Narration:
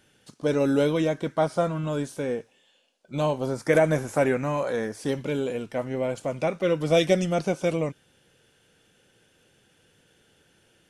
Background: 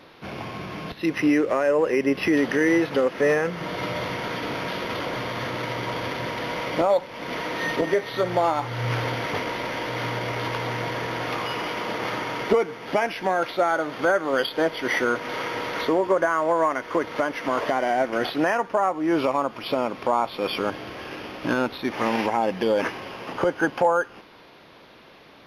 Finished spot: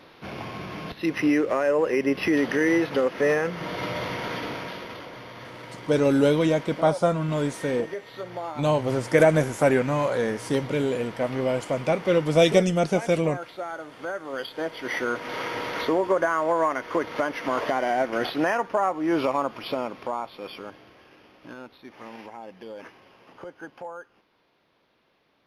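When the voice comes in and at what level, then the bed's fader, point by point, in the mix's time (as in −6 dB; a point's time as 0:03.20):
5.45 s, +2.5 dB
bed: 0:04.38 −1.5 dB
0:05.11 −12 dB
0:14.02 −12 dB
0:15.44 −1.5 dB
0:19.52 −1.5 dB
0:21.10 −18 dB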